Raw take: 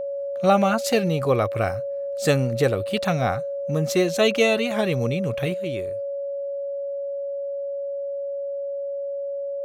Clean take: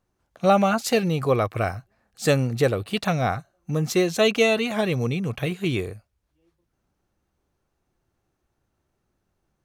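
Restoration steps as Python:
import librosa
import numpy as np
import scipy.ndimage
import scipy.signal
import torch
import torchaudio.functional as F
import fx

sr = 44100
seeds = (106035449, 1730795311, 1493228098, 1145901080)

y = fx.notch(x, sr, hz=560.0, q=30.0)
y = fx.fix_level(y, sr, at_s=5.54, step_db=7.5)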